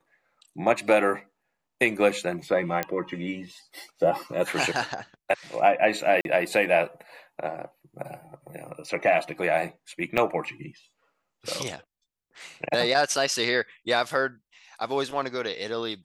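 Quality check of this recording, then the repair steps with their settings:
2.83 s: pop -11 dBFS
6.21–6.25 s: dropout 41 ms
10.17–10.18 s: dropout 6.7 ms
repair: de-click; interpolate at 6.21 s, 41 ms; interpolate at 10.17 s, 6.7 ms

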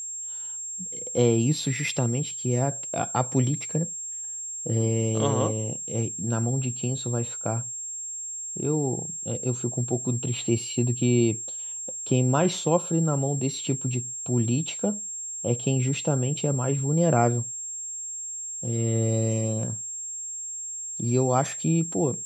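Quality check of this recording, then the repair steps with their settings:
whine 7.5 kHz -32 dBFS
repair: band-stop 7.5 kHz, Q 30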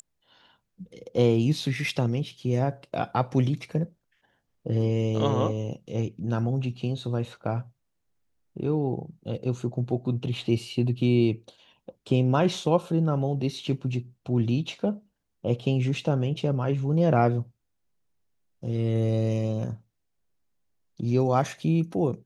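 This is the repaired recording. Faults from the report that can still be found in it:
nothing left

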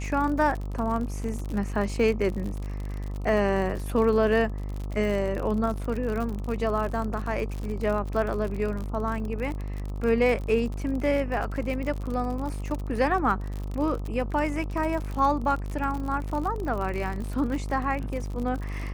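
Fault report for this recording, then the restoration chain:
buzz 50 Hz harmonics 26 -32 dBFS
crackle 56 per s -31 dBFS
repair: de-click; de-hum 50 Hz, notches 26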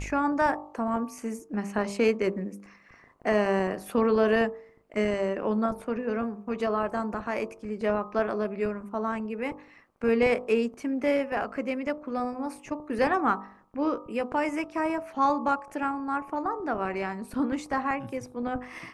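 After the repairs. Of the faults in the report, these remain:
nothing left

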